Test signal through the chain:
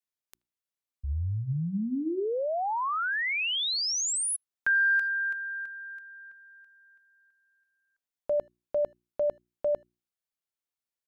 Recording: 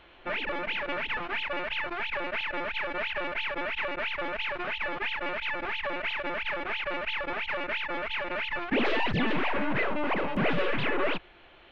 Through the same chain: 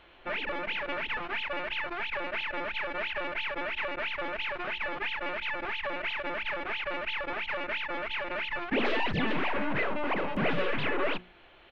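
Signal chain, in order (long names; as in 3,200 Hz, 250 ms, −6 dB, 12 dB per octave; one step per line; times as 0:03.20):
mains-hum notches 60/120/180/240/300/360 Hz
far-end echo of a speakerphone 80 ms, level −30 dB
level −1.5 dB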